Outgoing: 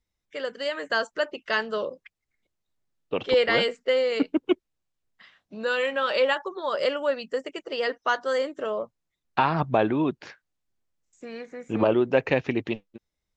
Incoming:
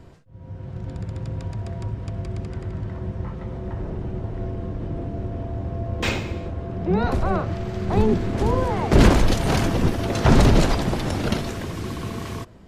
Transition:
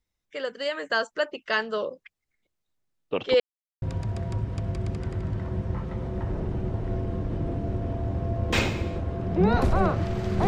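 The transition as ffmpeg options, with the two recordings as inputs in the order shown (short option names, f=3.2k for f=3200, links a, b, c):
-filter_complex "[0:a]apad=whole_dur=10.47,atrim=end=10.47,asplit=2[a][b];[a]atrim=end=3.4,asetpts=PTS-STARTPTS,afade=t=out:st=3.396:d=0.004:c=hsin[c];[b]atrim=start=3.4:end=3.82,asetpts=PTS-STARTPTS,volume=0[d];[1:a]atrim=start=1.32:end=7.97,asetpts=PTS-STARTPTS,afade=t=in:d=0.004:c=hsin[e];[c][d][e]concat=n=3:v=0:a=1"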